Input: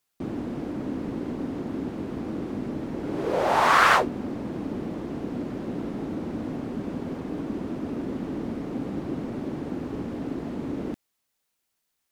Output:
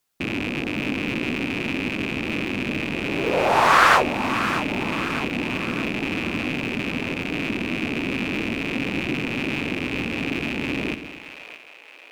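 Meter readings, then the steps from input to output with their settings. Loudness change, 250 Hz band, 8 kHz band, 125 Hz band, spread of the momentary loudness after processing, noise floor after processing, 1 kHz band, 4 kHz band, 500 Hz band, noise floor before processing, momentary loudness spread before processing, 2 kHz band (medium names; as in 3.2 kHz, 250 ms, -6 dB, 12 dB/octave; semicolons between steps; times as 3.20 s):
+5.0 dB, +3.5 dB, +5.0 dB, +4.0 dB, 8 LU, -46 dBFS, +3.5 dB, +9.0 dB, +3.5 dB, -78 dBFS, 11 LU, +7.5 dB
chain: rattle on loud lows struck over -42 dBFS, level -19 dBFS; two-band feedback delay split 530 Hz, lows 121 ms, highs 621 ms, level -10.5 dB; trim +3 dB; SBC 192 kbps 44.1 kHz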